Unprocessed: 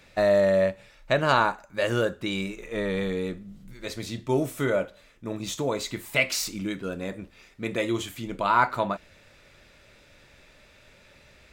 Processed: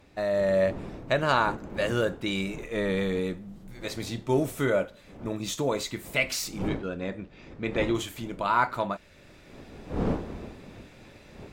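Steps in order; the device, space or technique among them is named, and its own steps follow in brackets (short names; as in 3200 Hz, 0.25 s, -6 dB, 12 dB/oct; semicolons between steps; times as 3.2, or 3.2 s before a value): 6.68–7.95 LPF 4300 Hz 12 dB/oct; smartphone video outdoors (wind noise 370 Hz -39 dBFS; AGC gain up to 8.5 dB; gain -8 dB; AAC 96 kbps 44100 Hz)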